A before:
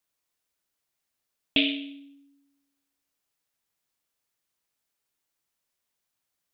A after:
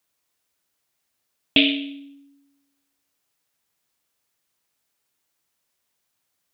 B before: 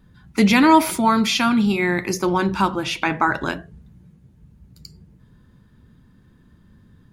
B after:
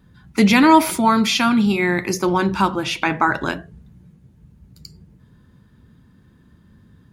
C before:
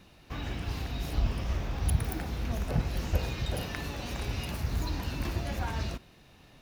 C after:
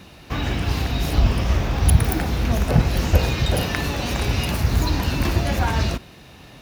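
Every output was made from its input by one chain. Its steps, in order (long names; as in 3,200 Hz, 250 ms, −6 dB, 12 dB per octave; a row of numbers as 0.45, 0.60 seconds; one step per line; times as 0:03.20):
high-pass filter 44 Hz
normalise the peak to −2 dBFS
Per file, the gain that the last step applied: +6.5, +1.5, +12.5 decibels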